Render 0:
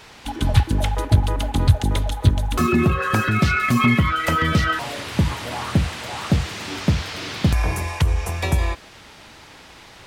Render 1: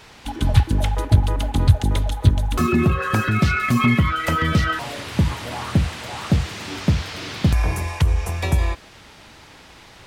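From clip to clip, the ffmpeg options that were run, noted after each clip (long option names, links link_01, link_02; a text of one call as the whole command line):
ffmpeg -i in.wav -af "lowshelf=frequency=220:gain=3,volume=-1.5dB" out.wav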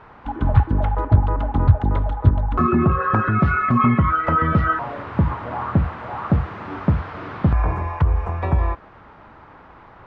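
ffmpeg -i in.wav -af "lowpass=frequency=1200:width_type=q:width=1.9" out.wav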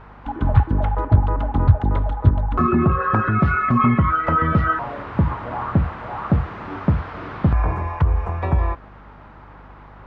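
ffmpeg -i in.wav -af "aeval=exprs='val(0)+0.00631*(sin(2*PI*50*n/s)+sin(2*PI*2*50*n/s)/2+sin(2*PI*3*50*n/s)/3+sin(2*PI*4*50*n/s)/4+sin(2*PI*5*50*n/s)/5)':channel_layout=same" out.wav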